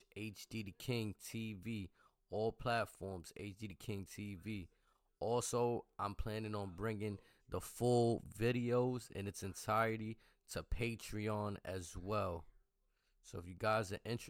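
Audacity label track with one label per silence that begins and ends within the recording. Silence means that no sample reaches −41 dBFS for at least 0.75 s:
12.380000	13.340000	silence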